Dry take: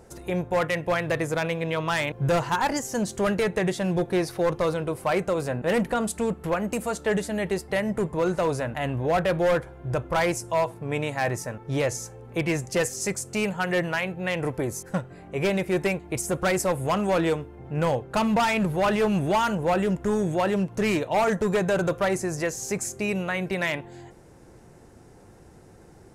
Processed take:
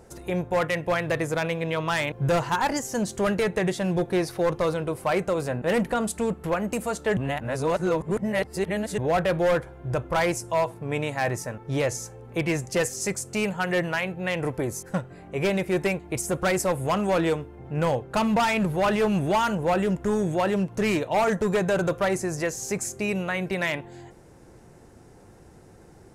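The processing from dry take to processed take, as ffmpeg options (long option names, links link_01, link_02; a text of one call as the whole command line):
ffmpeg -i in.wav -filter_complex "[0:a]asplit=3[link_01][link_02][link_03];[link_01]atrim=end=7.172[link_04];[link_02]atrim=start=7.168:end=8.982,asetpts=PTS-STARTPTS,areverse[link_05];[link_03]atrim=start=8.978[link_06];[link_04][link_05]acrossfade=duration=0.004:curve1=hsin:curve2=hsin[link_07];[link_07][link_06]acrossfade=duration=0.004:curve1=hsin:curve2=hsin" out.wav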